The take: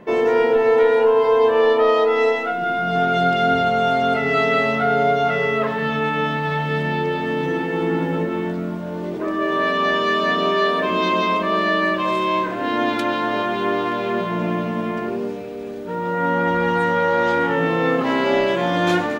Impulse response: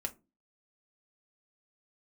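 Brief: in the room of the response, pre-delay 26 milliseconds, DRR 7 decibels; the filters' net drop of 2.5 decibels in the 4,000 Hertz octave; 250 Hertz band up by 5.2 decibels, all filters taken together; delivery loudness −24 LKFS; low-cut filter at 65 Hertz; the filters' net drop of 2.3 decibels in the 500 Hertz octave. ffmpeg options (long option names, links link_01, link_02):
-filter_complex "[0:a]highpass=65,equalizer=frequency=250:width_type=o:gain=8.5,equalizer=frequency=500:width_type=o:gain=-5.5,equalizer=frequency=4000:width_type=o:gain=-3.5,asplit=2[link_01][link_02];[1:a]atrim=start_sample=2205,adelay=26[link_03];[link_02][link_03]afir=irnorm=-1:irlink=0,volume=-8dB[link_04];[link_01][link_04]amix=inputs=2:normalize=0,volume=-5dB"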